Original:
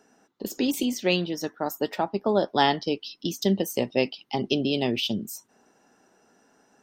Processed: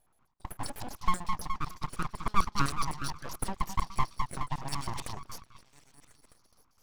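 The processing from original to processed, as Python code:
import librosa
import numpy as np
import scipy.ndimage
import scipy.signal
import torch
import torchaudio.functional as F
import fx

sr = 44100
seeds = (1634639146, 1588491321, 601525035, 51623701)

y = fx.filter_lfo_bandpass(x, sr, shape='square', hz=7.9, low_hz=560.0, high_hz=5100.0, q=6.3)
y = fx.echo_stepped(y, sr, ms=209, hz=410.0, octaves=0.7, feedback_pct=70, wet_db=-3.5)
y = np.abs(y)
y = y * librosa.db_to_amplitude(6.0)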